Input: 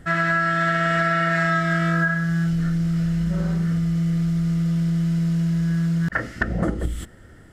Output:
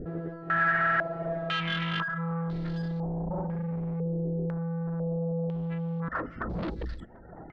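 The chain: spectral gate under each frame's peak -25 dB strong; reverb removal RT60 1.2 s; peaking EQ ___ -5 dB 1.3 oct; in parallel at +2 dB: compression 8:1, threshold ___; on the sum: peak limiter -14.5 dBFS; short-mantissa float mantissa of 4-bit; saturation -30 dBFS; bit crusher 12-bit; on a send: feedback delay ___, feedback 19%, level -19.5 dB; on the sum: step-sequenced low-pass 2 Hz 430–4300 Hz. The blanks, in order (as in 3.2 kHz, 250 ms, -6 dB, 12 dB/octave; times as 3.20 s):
77 Hz, -37 dBFS, 740 ms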